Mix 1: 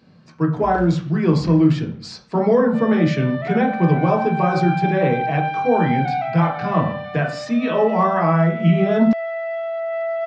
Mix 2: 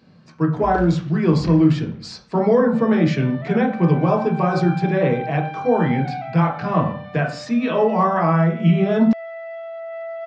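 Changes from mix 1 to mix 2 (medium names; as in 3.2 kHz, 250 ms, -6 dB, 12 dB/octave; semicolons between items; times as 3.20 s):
first sound +3.5 dB; second sound -7.0 dB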